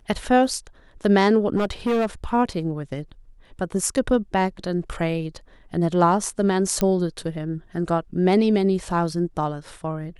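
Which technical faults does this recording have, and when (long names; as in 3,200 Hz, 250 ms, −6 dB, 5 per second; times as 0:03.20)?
0:01.56–0:02.06: clipping −17.5 dBFS
0:06.81: click −9 dBFS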